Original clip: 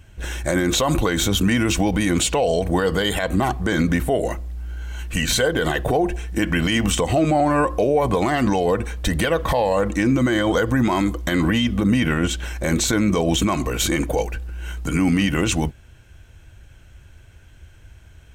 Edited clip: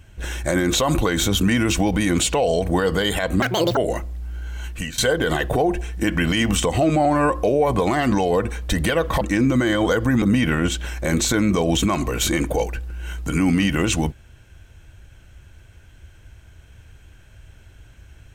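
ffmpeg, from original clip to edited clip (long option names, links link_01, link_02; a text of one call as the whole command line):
ffmpeg -i in.wav -filter_complex "[0:a]asplit=6[link_01][link_02][link_03][link_04][link_05][link_06];[link_01]atrim=end=3.424[link_07];[link_02]atrim=start=3.42:end=4.12,asetpts=PTS-STARTPTS,asetrate=88200,aresample=44100[link_08];[link_03]atrim=start=4.116:end=5.33,asetpts=PTS-STARTPTS,afade=type=out:start_time=0.884:duration=0.33:silence=0.11885[link_09];[link_04]atrim=start=5.33:end=9.562,asetpts=PTS-STARTPTS,afade=type=in:duration=0.004:curve=hsin:silence=0.11885[link_10];[link_05]atrim=start=9.868:end=10.882[link_11];[link_06]atrim=start=11.808[link_12];[link_07][link_08]acrossfade=duration=0.004:curve1=hsin:curve2=hsin[link_13];[link_09][link_10]concat=n=2:v=0:a=1[link_14];[link_13][link_14]acrossfade=duration=0.004:curve1=hsin:curve2=hsin[link_15];[link_15][link_11]acrossfade=duration=0.004:curve1=hsin:curve2=hsin[link_16];[link_16][link_12]acrossfade=duration=0.004:curve1=hsin:curve2=hsin" out.wav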